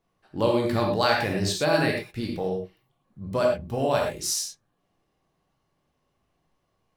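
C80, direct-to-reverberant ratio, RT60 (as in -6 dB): 6.0 dB, -0.5 dB, no single decay rate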